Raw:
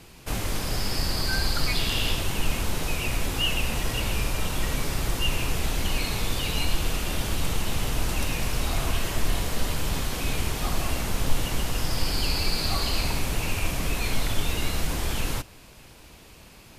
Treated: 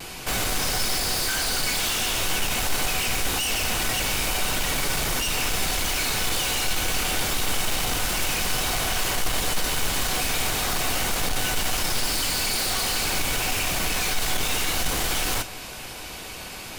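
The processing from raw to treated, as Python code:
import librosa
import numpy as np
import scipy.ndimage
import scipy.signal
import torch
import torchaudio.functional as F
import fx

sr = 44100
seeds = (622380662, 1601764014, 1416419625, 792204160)

p1 = fx.low_shelf(x, sr, hz=300.0, db=-9.5)
p2 = fx.over_compress(p1, sr, threshold_db=-30.0, ratio=-1.0)
p3 = p1 + (p2 * librosa.db_to_amplitude(-2.0))
p4 = fx.fold_sine(p3, sr, drive_db=15, ceiling_db=-10.0)
p5 = fx.vibrato(p4, sr, rate_hz=0.39, depth_cents=12.0)
p6 = 10.0 ** (-12.5 / 20.0) * np.tanh(p5 / 10.0 ** (-12.5 / 20.0))
y = fx.comb_fb(p6, sr, f0_hz=750.0, decay_s=0.18, harmonics='all', damping=0.0, mix_pct=70)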